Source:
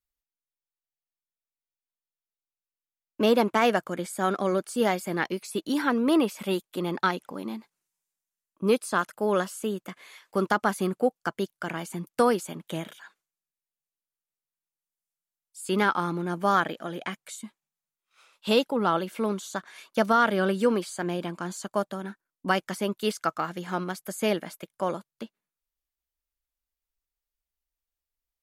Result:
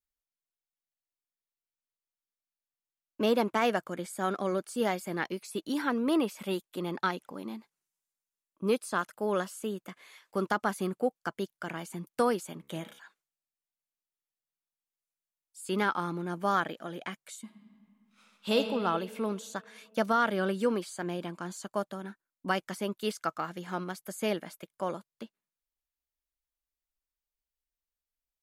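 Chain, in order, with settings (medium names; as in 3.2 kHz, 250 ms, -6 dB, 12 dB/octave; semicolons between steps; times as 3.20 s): 12.58–12.99 s: de-hum 69.27 Hz, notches 38; 17.44–18.56 s: reverb throw, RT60 2.6 s, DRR 3 dB; trim -5 dB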